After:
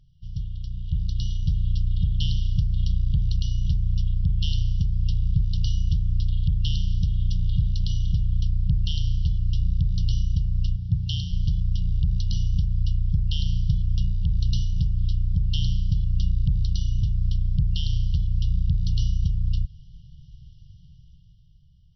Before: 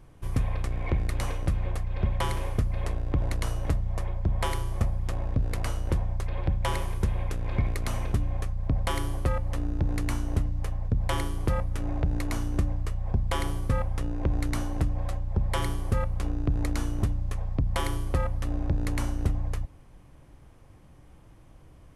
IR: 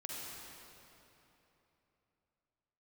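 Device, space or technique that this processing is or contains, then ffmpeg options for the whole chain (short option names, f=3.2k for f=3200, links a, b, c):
low-bitrate web radio: -filter_complex "[0:a]asplit=3[a][b][c];[a]afade=t=out:st=10.75:d=0.02[d];[b]highpass=80,afade=t=in:st=10.75:d=0.02,afade=t=out:st=11.3:d=0.02[e];[c]afade=t=in:st=11.3:d=0.02[f];[d][e][f]amix=inputs=3:normalize=0,afftfilt=real='re*(1-between(b*sr/4096,190,2800))':imag='im*(1-between(b*sr/4096,190,2800))':win_size=4096:overlap=0.75,dynaudnorm=f=190:g=13:m=14.5dB,alimiter=limit=-8dB:level=0:latency=1:release=234,volume=-4dB" -ar 22050 -c:a libmp3lame -b:a 24k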